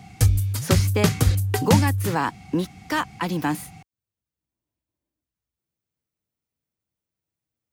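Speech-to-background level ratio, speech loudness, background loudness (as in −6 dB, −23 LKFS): −4.5 dB, −26.5 LKFS, −22.0 LKFS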